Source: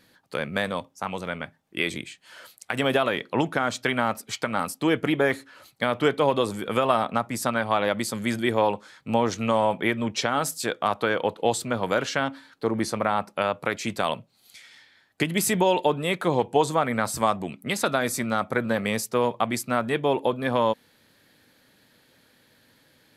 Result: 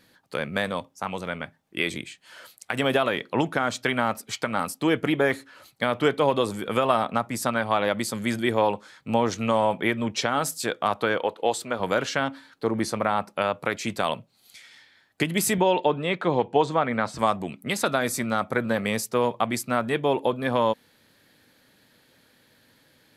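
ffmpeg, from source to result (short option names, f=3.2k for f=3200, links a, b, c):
-filter_complex "[0:a]asettb=1/sr,asplit=3[a][b][c];[a]atrim=end=11.184[d];[b]atrim=start=11.18:end=11.8,asetpts=PTS-STARTPTS,afade=t=in:d=0.004:c=qsin,afade=t=out:st=0.616:d=0.004:c=qsin,bass=f=250:g=-11,treble=f=4k:g=-3[e];[c]atrim=start=11.796[f];[d][e]acrossfade=d=0.004:c1=hsin:c2=qsin[g];[g][f]acrossfade=d=0.004:c1=qsin:c2=hsin,asettb=1/sr,asplit=3[h][i][j];[h]atrim=end=15.584[k];[i]atrim=start=15.58:end=17.19,asetpts=PTS-STARTPTS,afade=t=in:d=0.004:c=qsin,afade=t=out:st=1.606:d=0.004:c=qsin,highpass=100,lowpass=4.1k[l];[j]atrim=start=17.186[m];[k][l]acrossfade=d=0.004:c1=hsin:c2=qsin[n];[n][m]acrossfade=d=0.004:c1=qsin:c2=hsin"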